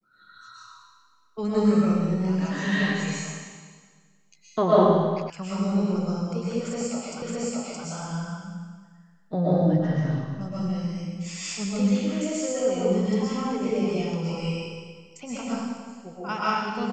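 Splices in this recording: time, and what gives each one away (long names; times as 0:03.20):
0:05.30: cut off before it has died away
0:07.22: the same again, the last 0.62 s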